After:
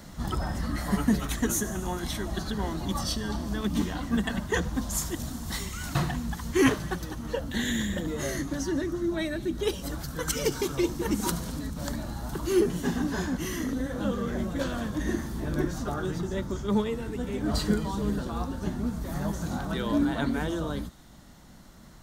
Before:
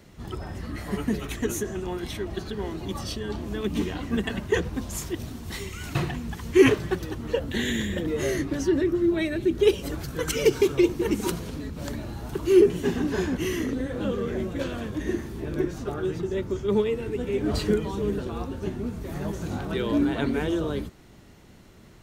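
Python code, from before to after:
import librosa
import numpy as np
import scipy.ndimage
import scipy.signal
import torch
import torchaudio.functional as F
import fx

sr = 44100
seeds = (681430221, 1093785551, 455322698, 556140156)

p1 = fx.graphic_eq_15(x, sr, hz=(100, 400, 2500), db=(-9, -12, -10))
p2 = fx.rider(p1, sr, range_db=10, speed_s=2.0)
p3 = p2 + fx.echo_wet_highpass(p2, sr, ms=73, feedback_pct=85, hz=4500.0, wet_db=-16.5, dry=0)
y = p3 * 10.0 ** (2.5 / 20.0)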